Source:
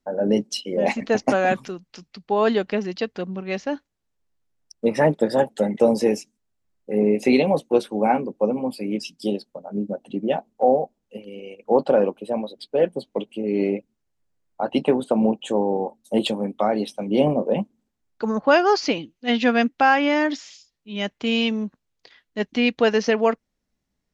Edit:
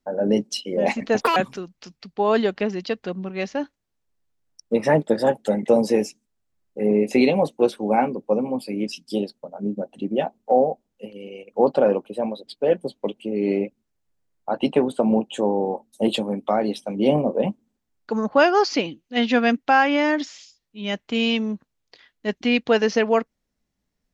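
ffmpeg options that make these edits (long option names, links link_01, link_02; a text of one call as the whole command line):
ffmpeg -i in.wav -filter_complex "[0:a]asplit=3[link_01][link_02][link_03];[link_01]atrim=end=1.214[link_04];[link_02]atrim=start=1.21:end=1.48,asetpts=PTS-STARTPTS,asetrate=78057,aresample=44100,atrim=end_sample=6727,asetpts=PTS-STARTPTS[link_05];[link_03]atrim=start=1.476[link_06];[link_04][link_05]acrossfade=duration=0.004:curve1=hsin:curve2=hsin[link_07];[link_07][link_06]acrossfade=duration=0.004:curve1=hsin:curve2=hsin" out.wav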